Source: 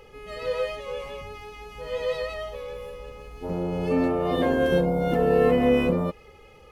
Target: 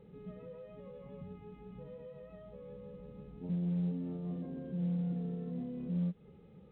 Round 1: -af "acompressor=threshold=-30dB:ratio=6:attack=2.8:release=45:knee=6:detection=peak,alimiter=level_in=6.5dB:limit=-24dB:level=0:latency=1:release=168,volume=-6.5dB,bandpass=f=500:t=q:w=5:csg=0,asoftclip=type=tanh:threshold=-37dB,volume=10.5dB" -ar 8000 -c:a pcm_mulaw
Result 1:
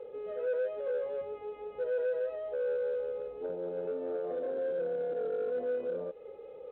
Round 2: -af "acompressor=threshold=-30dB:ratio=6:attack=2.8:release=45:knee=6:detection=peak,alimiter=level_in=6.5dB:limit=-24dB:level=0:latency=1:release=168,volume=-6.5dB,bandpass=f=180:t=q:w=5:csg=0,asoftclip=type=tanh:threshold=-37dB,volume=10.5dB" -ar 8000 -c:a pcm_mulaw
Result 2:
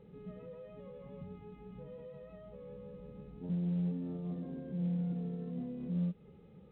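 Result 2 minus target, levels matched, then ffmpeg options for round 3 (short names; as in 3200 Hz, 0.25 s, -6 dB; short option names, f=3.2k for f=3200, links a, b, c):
compressor: peak gain reduction +14.5 dB
-af "alimiter=level_in=6.5dB:limit=-24dB:level=0:latency=1:release=168,volume=-6.5dB,bandpass=f=180:t=q:w=5:csg=0,asoftclip=type=tanh:threshold=-37dB,volume=10.5dB" -ar 8000 -c:a pcm_mulaw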